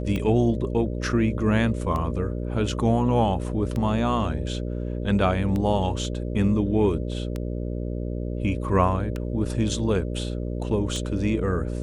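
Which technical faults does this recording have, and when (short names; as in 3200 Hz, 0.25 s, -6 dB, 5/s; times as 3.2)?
buzz 60 Hz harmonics 10 -29 dBFS
tick 33 1/3 rpm -17 dBFS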